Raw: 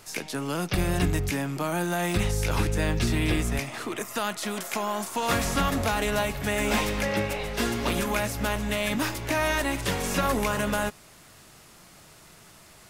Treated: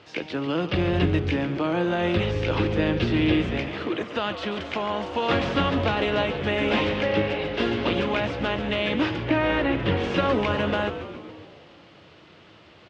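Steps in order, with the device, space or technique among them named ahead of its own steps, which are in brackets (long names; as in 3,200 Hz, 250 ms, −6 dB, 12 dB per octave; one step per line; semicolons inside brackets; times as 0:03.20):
0:09.16–0:09.97: bass and treble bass +5 dB, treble −11 dB
frequency-shifting delay pedal into a guitar cabinet (echo with shifted repeats 139 ms, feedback 63%, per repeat −130 Hz, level −11 dB; loudspeaker in its box 84–4,000 Hz, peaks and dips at 88 Hz +7 dB, 320 Hz +8 dB, 510 Hz +7 dB, 3,000 Hz +6 dB)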